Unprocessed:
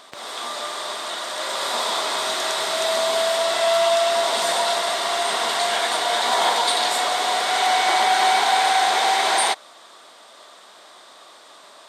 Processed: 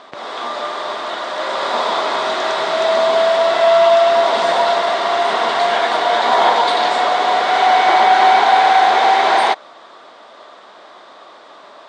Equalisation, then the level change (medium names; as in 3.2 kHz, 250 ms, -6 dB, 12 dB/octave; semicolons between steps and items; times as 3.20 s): Bessel low-pass 4.7 kHz, order 8; bass shelf 69 Hz -9.5 dB; treble shelf 2.4 kHz -10.5 dB; +9.0 dB